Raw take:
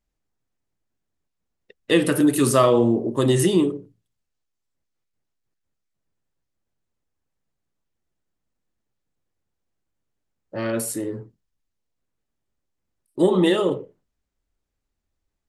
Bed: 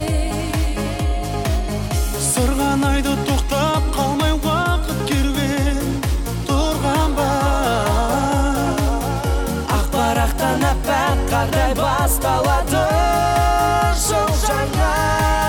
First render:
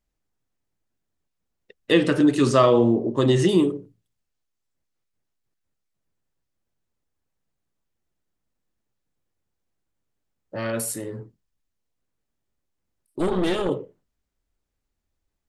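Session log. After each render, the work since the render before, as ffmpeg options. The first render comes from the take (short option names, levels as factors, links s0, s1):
-filter_complex "[0:a]asettb=1/sr,asplit=3[s0][s1][s2];[s0]atrim=end=1.924[s3];[s1]atrim=start=1.92:end=3.49,asetpts=PTS-STARTPTS,afade=t=in:d=0.004:c=qsin,afade=t=out:st=1.566:d=0.004:c=qsin,lowpass=f=6600:w=0.5412,lowpass=f=6600:w=1.3066[s4];[s2]atrim=start=3.486[s5];[s3][s4]acrossfade=d=0.004:c1=hsin:c2=qsin[s6];[s6][s5]acrossfade=d=0.004:c1=qsin:c2=hsin,asettb=1/sr,asplit=3[s7][s8][s9];[s7]atrim=end=10.564[s10];[s8]atrim=start=10.56:end=11.19,asetpts=PTS-STARTPTS,afade=t=in:d=0.004:c=qsin,afade=t=out:st=0.626:d=0.004:c=qsin,equalizer=f=320:t=o:w=0.77:g=-7.5[s11];[s9]atrim=start=11.186[s12];[s10][s11]acrossfade=d=0.004:c1=hsin:c2=qsin[s13];[s13][s12]acrossfade=d=0.004:c1=qsin:c2=hsin,asettb=1/sr,asplit=3[s14][s15][s16];[s14]atrim=end=13.194[s17];[s15]atrim=start=13.19:end=13.69,asetpts=PTS-STARTPTS,afade=t=in:d=0.004:c=qsin,afade=t=out:st=0.496:d=0.004:c=qsin,aeval=exprs='(tanh(7.94*val(0)+0.75)-tanh(0.75))/7.94':c=same[s18];[s16]atrim=start=13.686[s19];[s17][s18]acrossfade=d=0.004:c1=hsin:c2=qsin[s20];[s20][s19]acrossfade=d=0.004:c1=qsin:c2=hsin"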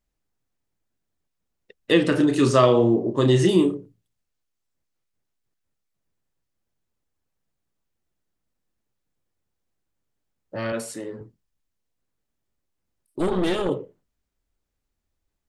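-filter_complex "[0:a]asettb=1/sr,asplit=3[s0][s1][s2];[s0]atrim=end=2.094[s3];[s1]atrim=start=2.09:end=3.75,asetpts=PTS-STARTPTS,afade=t=in:d=0.004:c=qsin,afade=t=out:st=1.656:d=0.004:c=qsin,asplit=2[s4][s5];[s5]adelay=32,volume=0.376[s6];[s4][s6]amix=inputs=2:normalize=0,atrim=end_sample=73206[s7];[s2]atrim=start=3.746[s8];[s3][s7]acrossfade=d=0.004:c1=hsin:c2=qsin[s9];[s9][s8]acrossfade=d=0.004:c1=qsin:c2=hsin,asettb=1/sr,asplit=3[s10][s11][s12];[s10]atrim=end=10.724[s13];[s11]atrim=start=10.72:end=11.21,asetpts=PTS-STARTPTS,afade=t=in:d=0.004:c=qsin,afade=t=out:st=0.486:d=0.004:c=qsin,highpass=190,lowpass=6100[s14];[s12]atrim=start=11.206[s15];[s13][s14]acrossfade=d=0.004:c1=hsin:c2=qsin[s16];[s16][s15]acrossfade=d=0.004:c1=qsin:c2=hsin"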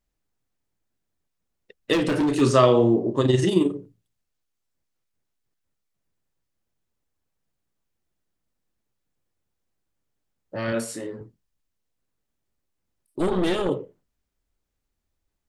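-filter_complex "[0:a]asplit=3[s0][s1][s2];[s0]afade=t=out:st=1.92:d=0.02[s3];[s1]asoftclip=type=hard:threshold=0.119,afade=t=in:st=1.92:d=0.02,afade=t=out:st=2.4:d=0.02[s4];[s2]afade=t=in:st=2.4:d=0.02[s5];[s3][s4][s5]amix=inputs=3:normalize=0,asettb=1/sr,asplit=3[s6][s7][s8];[s6]atrim=end=3.214[s9];[s7]atrim=start=3.21:end=3.76,asetpts=PTS-STARTPTS,afade=t=in:d=0.004:c=qsin,afade=t=out:st=0.546:d=0.004:c=qsin,tremolo=f=22:d=0.519[s10];[s8]atrim=start=3.756[s11];[s9][s10]acrossfade=d=0.004:c1=hsin:c2=qsin[s12];[s12][s11]acrossfade=d=0.004:c1=qsin:c2=hsin,asettb=1/sr,asplit=3[s13][s14][s15];[s13]atrim=end=10.654[s16];[s14]atrim=start=10.65:end=11.07,asetpts=PTS-STARTPTS,afade=t=in:d=0.004:c=qsin,afade=t=out:st=0.416:d=0.004:c=qsin,asplit=2[s17][s18];[s18]adelay=26,volume=0.631[s19];[s17][s19]amix=inputs=2:normalize=0,atrim=end_sample=18522[s20];[s15]atrim=start=11.066[s21];[s16][s20]acrossfade=d=0.004:c1=hsin:c2=qsin[s22];[s22][s21]acrossfade=d=0.004:c1=qsin:c2=hsin"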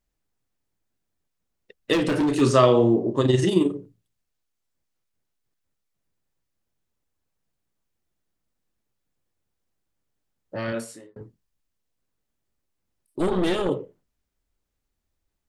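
-filter_complex "[0:a]asplit=2[s0][s1];[s0]atrim=end=11.16,asetpts=PTS-STARTPTS,afade=t=out:st=10.56:d=0.6[s2];[s1]atrim=start=11.16,asetpts=PTS-STARTPTS,afade=t=in:d=0.004:c=hsin[s3];[s2][s3]concat=n=2:v=0:a=1"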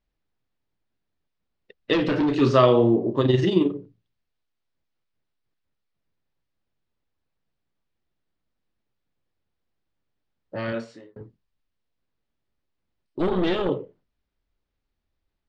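-af "lowpass=f=4700:w=0.5412,lowpass=f=4700:w=1.3066"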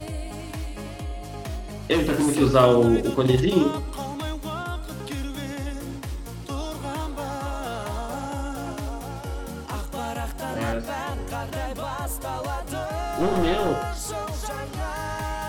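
-filter_complex "[1:a]volume=0.224[s0];[0:a][s0]amix=inputs=2:normalize=0"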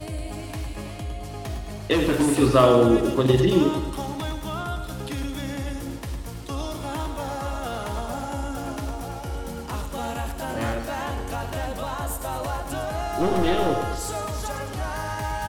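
-af "aecho=1:1:107|214|321|428|535|642|749:0.355|0.199|0.111|0.0623|0.0349|0.0195|0.0109"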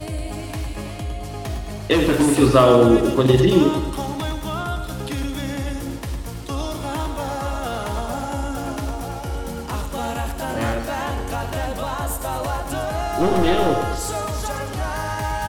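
-af "volume=1.58,alimiter=limit=0.794:level=0:latency=1"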